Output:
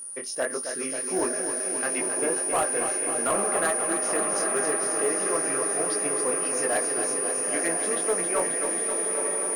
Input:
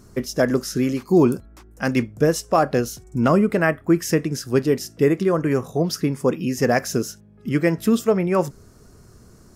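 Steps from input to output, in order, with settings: HPF 580 Hz 12 dB/oct; treble ducked by the level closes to 2200 Hz, closed at -22 dBFS; whine 9500 Hz -31 dBFS; chorus 1.5 Hz, delay 19.5 ms, depth 4.6 ms; on a send: diffused feedback echo 0.961 s, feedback 59%, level -5.5 dB; on the sum: hard clip -19.5 dBFS, distortion -16 dB; lo-fi delay 0.268 s, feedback 80%, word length 9-bit, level -7.5 dB; gain -1 dB

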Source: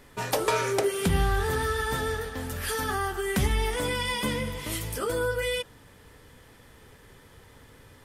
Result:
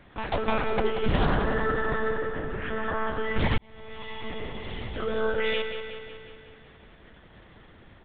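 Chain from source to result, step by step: monotone LPC vocoder at 8 kHz 220 Hz; 1.35–3.07 LPF 2700 Hz 24 dB/oct; feedback echo 0.184 s, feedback 60%, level -8.5 dB; 3.58–5.19 fade in; Doppler distortion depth 0.28 ms

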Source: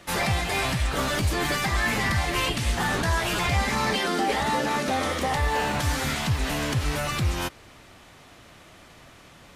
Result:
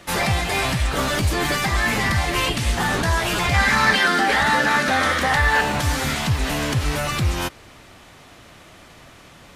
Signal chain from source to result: 3.54–5.61 fifteen-band EQ 400 Hz -4 dB, 1600 Hz +11 dB, 4000 Hz +3 dB; gain +4 dB

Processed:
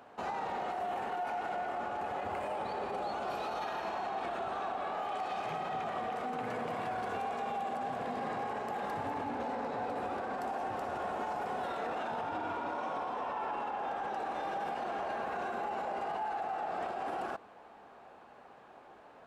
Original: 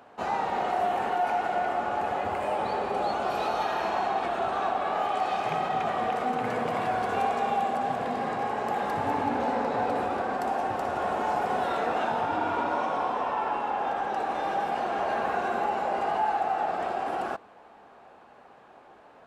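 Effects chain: limiter -26.5 dBFS, peak gain reduction 9.5 dB; gain -2.5 dB

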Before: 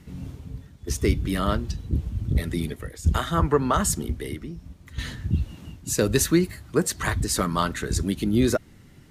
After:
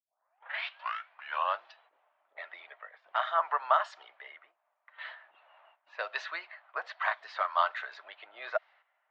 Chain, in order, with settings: tape start at the beginning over 1.65 s; Chebyshev high-pass 640 Hz, order 5; gate -56 dBFS, range -9 dB; Bessel low-pass 2300 Hz, order 6; low-pass opened by the level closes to 1600 Hz, open at -28 dBFS

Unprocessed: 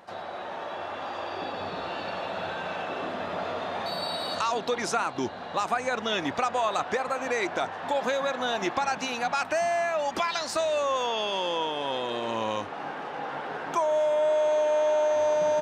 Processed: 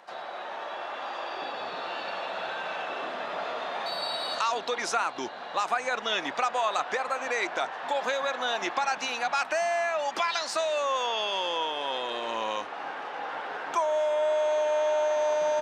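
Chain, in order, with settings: weighting filter A

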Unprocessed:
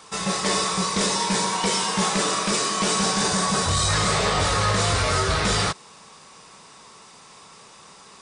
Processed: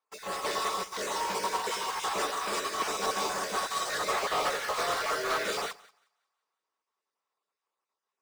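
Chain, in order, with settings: random spectral dropouts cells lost 23%; Bessel high-pass 470 Hz, order 4; high shelf 2800 Hz -11.5 dB; in parallel at -3.5 dB: companded quantiser 2-bit; on the sum: split-band echo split 720 Hz, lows 95 ms, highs 0.179 s, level -9 dB; upward expander 2.5:1, over -41 dBFS; gain -5.5 dB

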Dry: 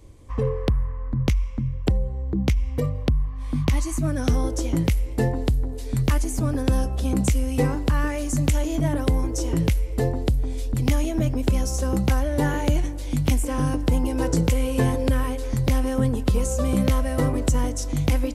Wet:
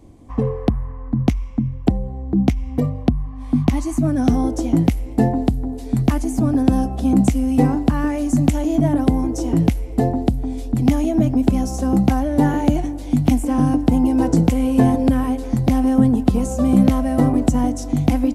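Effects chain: small resonant body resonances 240/710 Hz, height 14 dB, ringing for 20 ms; gain -2.5 dB

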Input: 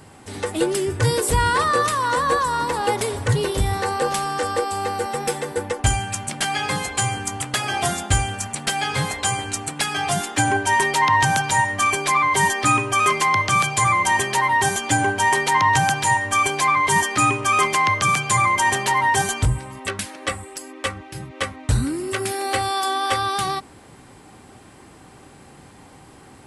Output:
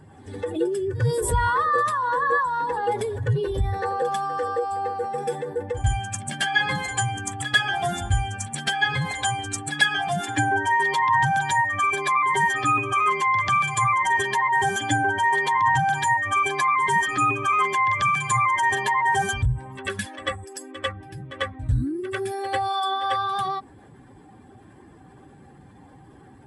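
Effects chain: spectral contrast raised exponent 1.7; small resonant body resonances 1700/3400 Hz, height 15 dB, ringing for 50 ms; pre-echo 95 ms -13 dB; gain -3 dB

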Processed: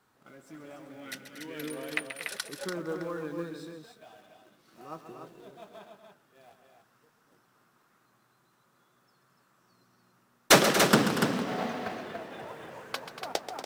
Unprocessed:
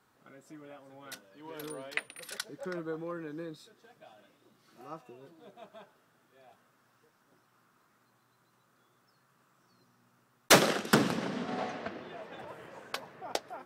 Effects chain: 0.88–1.77 graphic EQ 250/1000/2000 Hz +7/-10/+10 dB; in parallel at -12 dB: companded quantiser 4-bit; on the sum: loudspeakers at several distances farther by 46 m -11 dB, 81 m -12 dB, 99 m -6 dB

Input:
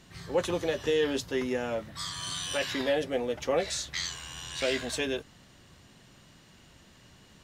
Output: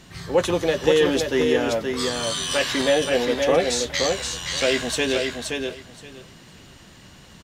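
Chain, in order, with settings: feedback echo 0.523 s, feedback 17%, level -4.5 dB; gain +8 dB

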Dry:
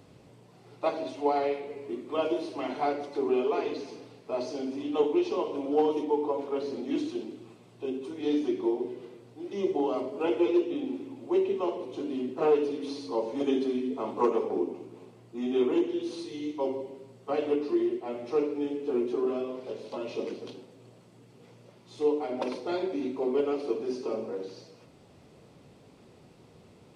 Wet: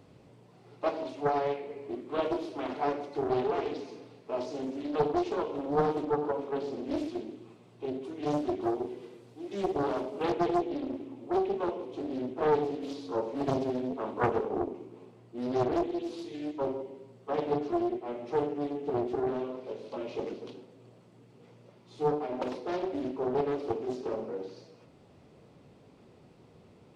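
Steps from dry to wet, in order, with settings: high shelf 3400 Hz -4.5 dB, from 8.61 s +3.5 dB, from 10.32 s -6 dB; Doppler distortion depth 0.78 ms; gain -1.5 dB

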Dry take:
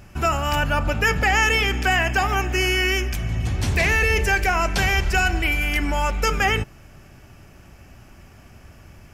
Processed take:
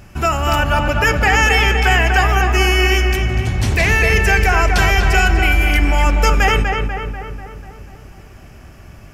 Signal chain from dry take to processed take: darkening echo 0.245 s, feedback 59%, low-pass 2700 Hz, level -4 dB; gain +4 dB

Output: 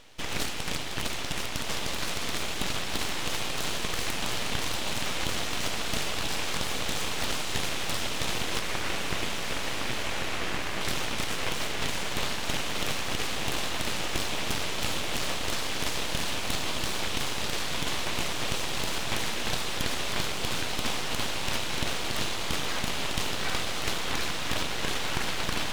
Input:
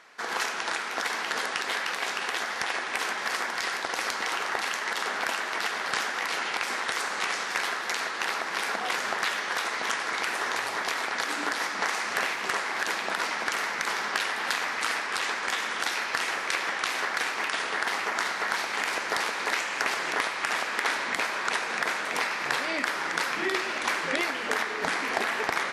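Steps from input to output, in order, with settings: 8.59–10.81 LPF 1200 Hz 12 dB/oct; vocal rider within 3 dB; diffused feedback echo 1.596 s, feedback 63%, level -3.5 dB; full-wave rectifier

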